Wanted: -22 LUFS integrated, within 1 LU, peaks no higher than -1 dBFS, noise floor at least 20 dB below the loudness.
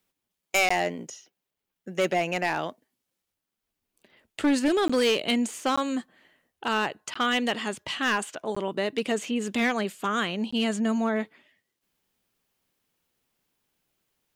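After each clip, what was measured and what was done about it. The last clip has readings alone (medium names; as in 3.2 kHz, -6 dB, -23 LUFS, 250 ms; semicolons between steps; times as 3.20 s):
clipped samples 0.8%; clipping level -18.0 dBFS; dropouts 6; longest dropout 15 ms; loudness -27.0 LUFS; peak level -18.0 dBFS; loudness target -22.0 LUFS
-> clip repair -18 dBFS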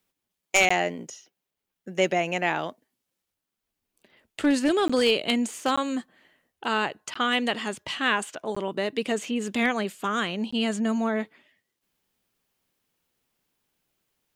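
clipped samples 0.0%; dropouts 6; longest dropout 15 ms
-> interpolate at 0.69/4.88/5.76/7.14/8.55/10.51 s, 15 ms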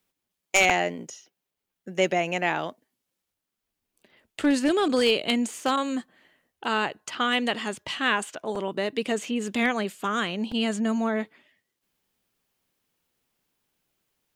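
dropouts 0; loudness -26.0 LUFS; peak level -8.0 dBFS; loudness target -22.0 LUFS
-> trim +4 dB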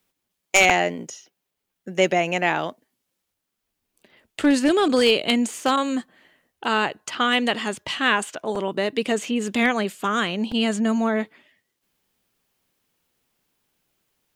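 loudness -22.0 LUFS; peak level -4.0 dBFS; noise floor -80 dBFS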